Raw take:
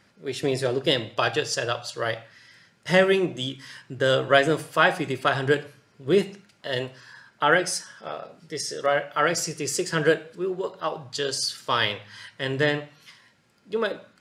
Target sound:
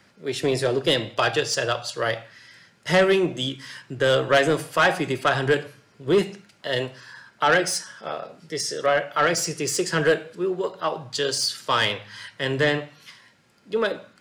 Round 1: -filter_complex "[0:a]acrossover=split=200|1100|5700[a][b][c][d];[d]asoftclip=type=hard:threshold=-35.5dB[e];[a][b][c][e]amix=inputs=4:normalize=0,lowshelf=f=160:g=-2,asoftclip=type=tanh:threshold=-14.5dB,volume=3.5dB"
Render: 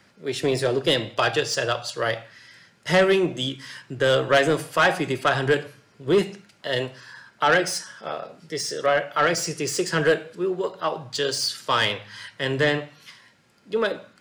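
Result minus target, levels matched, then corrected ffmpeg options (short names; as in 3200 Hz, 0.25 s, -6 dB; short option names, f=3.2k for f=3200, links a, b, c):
hard clip: distortion +7 dB
-filter_complex "[0:a]acrossover=split=200|1100|5700[a][b][c][d];[d]asoftclip=type=hard:threshold=-29dB[e];[a][b][c][e]amix=inputs=4:normalize=0,lowshelf=f=160:g=-2,asoftclip=type=tanh:threshold=-14.5dB,volume=3.5dB"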